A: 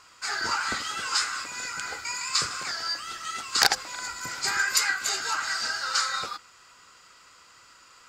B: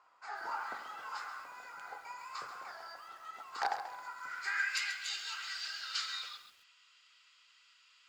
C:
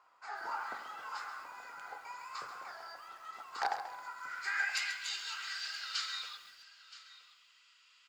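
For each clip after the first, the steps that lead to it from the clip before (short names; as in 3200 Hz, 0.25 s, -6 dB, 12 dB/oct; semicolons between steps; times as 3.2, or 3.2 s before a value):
de-hum 45.7 Hz, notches 39; band-pass sweep 810 Hz -> 3100 Hz, 3.97–4.89; lo-fi delay 0.135 s, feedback 35%, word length 9-bit, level -10 dB; gain -3 dB
echo 0.973 s -17 dB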